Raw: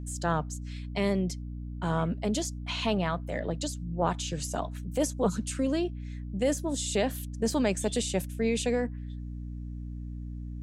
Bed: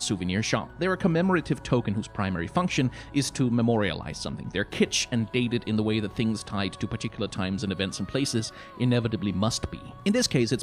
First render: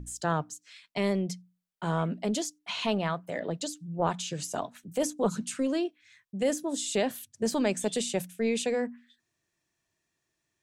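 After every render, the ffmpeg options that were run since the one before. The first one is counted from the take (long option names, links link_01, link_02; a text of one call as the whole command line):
ffmpeg -i in.wav -af "bandreject=frequency=60:width_type=h:width=6,bandreject=frequency=120:width_type=h:width=6,bandreject=frequency=180:width_type=h:width=6,bandreject=frequency=240:width_type=h:width=6,bandreject=frequency=300:width_type=h:width=6" out.wav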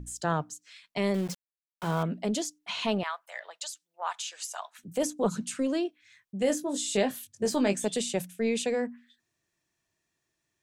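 ffmpeg -i in.wav -filter_complex "[0:a]asettb=1/sr,asplit=3[link_01][link_02][link_03];[link_01]atrim=end=1.144[link_04];[link_02]atrim=start=1.14:end=2.03,asetpts=PTS-STARTPTS,afade=type=in:duration=0.004:curve=qsin,afade=type=out:start_time=0.886:duration=0.004:curve=qsin,aeval=exprs='val(0)*gte(abs(val(0)),0.0133)':channel_layout=same[link_05];[link_03]atrim=start=2.026[link_06];[link_04][link_05]acrossfade=duration=0.004:curve1=hsin:curve2=qsin[link_07];[link_07][link_06]acrossfade=duration=0.004:curve1=qsin:curve2=hsin,asettb=1/sr,asplit=3[link_08][link_09][link_10];[link_08]atrim=end=3.034[link_11];[link_09]atrim=start=3.03:end=4.79,asetpts=PTS-STARTPTS,afade=type=in:duration=0.004:curve=qsin,afade=type=out:start_time=1.756:duration=0.004:curve=qsin,highpass=frequency=870:width=0.5412,highpass=frequency=870:width=1.3066[link_12];[link_10]atrim=start=4.786[link_13];[link_11][link_12]acrossfade=duration=0.004:curve1=hsin:curve2=qsin[link_14];[link_14][link_13]acrossfade=duration=0.004:curve1=qsin:curve2=hsin,asettb=1/sr,asplit=3[link_15][link_16][link_17];[link_15]atrim=end=6.394[link_18];[link_16]atrim=start=6.39:end=7.86,asetpts=PTS-STARTPTS,afade=type=in:duration=0.004:curve=qsin,afade=type=out:start_time=1.466:duration=0.004:curve=qsin,asplit=2[link_19][link_20];[link_20]adelay=20,volume=-7dB[link_21];[link_19][link_21]amix=inputs=2:normalize=0,atrim=end_sample=64827[link_22];[link_17]atrim=start=7.856[link_23];[link_18][link_22]acrossfade=duration=0.004:curve1=hsin:curve2=qsin[link_24];[link_24][link_23]acrossfade=duration=0.004:curve1=qsin:curve2=hsin" out.wav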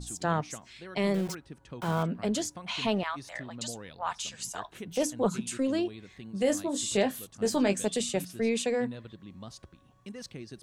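ffmpeg -i in.wav -i bed.wav -filter_complex "[1:a]volume=-19.5dB[link_01];[0:a][link_01]amix=inputs=2:normalize=0" out.wav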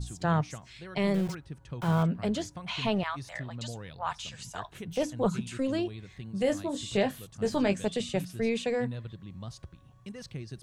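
ffmpeg -i in.wav -filter_complex "[0:a]acrossover=split=4300[link_01][link_02];[link_02]acompressor=threshold=-47dB:ratio=4:attack=1:release=60[link_03];[link_01][link_03]amix=inputs=2:normalize=0,lowshelf=frequency=180:width_type=q:width=1.5:gain=6.5" out.wav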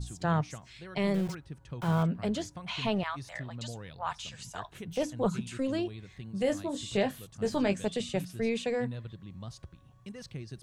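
ffmpeg -i in.wav -af "volume=-1.5dB" out.wav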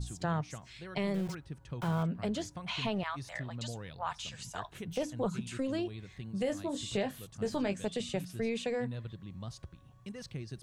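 ffmpeg -i in.wav -af "acompressor=threshold=-32dB:ratio=2" out.wav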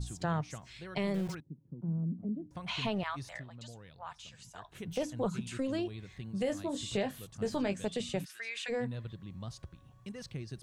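ffmpeg -i in.wav -filter_complex "[0:a]asettb=1/sr,asplit=3[link_01][link_02][link_03];[link_01]atrim=end=1.404[link_04];[link_02]atrim=start=1.4:end=2.51,asetpts=PTS-STARTPTS,afade=type=in:duration=0.004:curve=qsin,afade=type=out:start_time=1.106:duration=0.004:curve=qsin,asuperpass=centerf=220:order=4:qfactor=1.3[link_05];[link_03]atrim=start=2.506[link_06];[link_04][link_05]acrossfade=duration=0.004:curve1=hsin:curve2=qsin[link_07];[link_07][link_06]acrossfade=duration=0.004:curve1=qsin:curve2=hsin,asplit=3[link_08][link_09][link_10];[link_08]afade=type=out:start_time=8.24:duration=0.02[link_11];[link_09]highpass=frequency=1600:width_type=q:width=2.5,afade=type=in:start_time=8.24:duration=0.02,afade=type=out:start_time=8.68:duration=0.02[link_12];[link_10]afade=type=in:start_time=8.68:duration=0.02[link_13];[link_11][link_12][link_13]amix=inputs=3:normalize=0,asplit=3[link_14][link_15][link_16];[link_14]atrim=end=3.46,asetpts=PTS-STARTPTS,afade=type=out:start_time=3.25:duration=0.21:silence=0.375837[link_17];[link_15]atrim=start=3.46:end=4.64,asetpts=PTS-STARTPTS,volume=-8.5dB[link_18];[link_16]atrim=start=4.64,asetpts=PTS-STARTPTS,afade=type=in:duration=0.21:silence=0.375837[link_19];[link_17][link_18][link_19]concat=n=3:v=0:a=1" out.wav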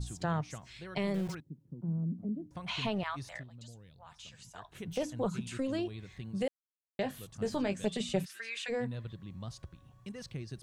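ffmpeg -i in.wav -filter_complex "[0:a]asettb=1/sr,asplit=3[link_01][link_02][link_03];[link_01]atrim=end=3.434[link_04];[link_02]atrim=start=3.43:end=4.13,asetpts=PTS-STARTPTS,afade=type=in:duration=0.004:curve=qsin,afade=type=out:start_time=0.696:duration=0.004:curve=qsin,equalizer=frequency=1200:width=0.43:gain=-11[link_05];[link_03]atrim=start=4.126[link_06];[link_04][link_05]acrossfade=duration=0.004:curve1=hsin:curve2=qsin[link_07];[link_07][link_06]acrossfade=duration=0.004:curve1=qsin:curve2=hsin,asettb=1/sr,asplit=3[link_08][link_09][link_10];[link_08]atrim=end=7.824[link_11];[link_09]atrim=start=7.82:end=8.55,asetpts=PTS-STARTPTS,afade=type=in:duration=0.004:curve=qsin,afade=type=out:start_time=0.726:duration=0.004:curve=qsin,aecho=1:1:5.1:0.65,atrim=end_sample=32193[link_12];[link_10]atrim=start=8.546[link_13];[link_11][link_12]acrossfade=duration=0.004:curve1=hsin:curve2=qsin[link_14];[link_14][link_13]acrossfade=duration=0.004:curve1=qsin:curve2=hsin,asplit=3[link_15][link_16][link_17];[link_15]atrim=end=6.48,asetpts=PTS-STARTPTS,afade=type=out:start_time=6.476:duration=0.004:curve=hsin[link_18];[link_16]atrim=start=6.48:end=6.99,asetpts=PTS-STARTPTS,volume=0[link_19];[link_17]atrim=start=6.99,asetpts=PTS-STARTPTS,afade=type=in:duration=0.004:curve=hsin[link_20];[link_18][link_19][link_20]concat=n=3:v=0:a=1" out.wav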